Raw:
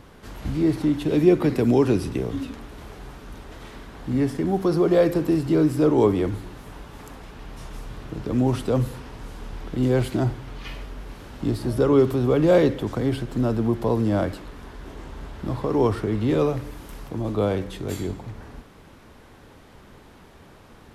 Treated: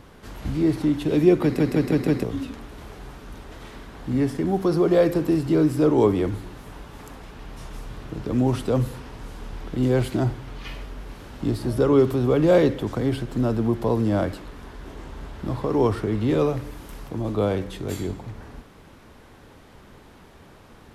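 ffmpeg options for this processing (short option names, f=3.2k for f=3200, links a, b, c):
-filter_complex "[0:a]asplit=6[a][b][c][d][e][f];[a]atrim=end=1.592[g];[b]atrim=start=1.428:end=1.592[h];[c]atrim=start=1.428:end=1.592[i];[d]atrim=start=1.428:end=1.592[j];[e]atrim=start=1.428:end=1.592[k];[f]atrim=start=2.228[l];[g][h]acrossfade=d=0.004:c1=hsin:c2=hsin[m];[m][i]acrossfade=d=0.004:c1=hsin:c2=hsin[n];[n][j]acrossfade=d=0.004:c1=hsin:c2=hsin[o];[o][k]acrossfade=d=0.004:c1=hsin:c2=hsin[p];[p][l]acrossfade=d=0.004:c1=hsin:c2=hsin"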